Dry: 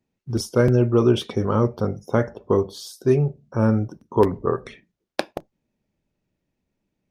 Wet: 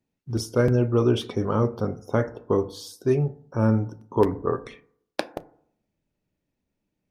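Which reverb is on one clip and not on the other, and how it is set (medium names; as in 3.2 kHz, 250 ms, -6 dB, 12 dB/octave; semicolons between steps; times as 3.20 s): FDN reverb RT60 0.64 s, low-frequency decay 1×, high-frequency decay 0.3×, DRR 13.5 dB; trim -3 dB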